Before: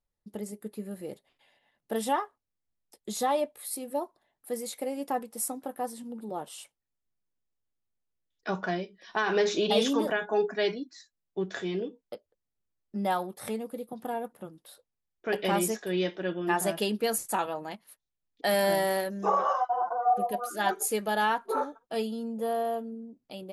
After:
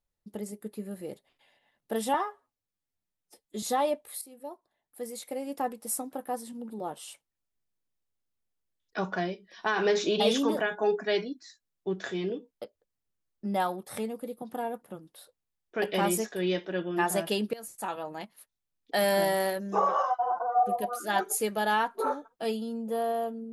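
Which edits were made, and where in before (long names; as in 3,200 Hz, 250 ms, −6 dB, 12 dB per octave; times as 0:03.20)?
0:02.14–0:03.13: time-stretch 1.5×
0:03.72–0:05.27: fade in, from −14.5 dB
0:17.04–0:17.73: fade in linear, from −21 dB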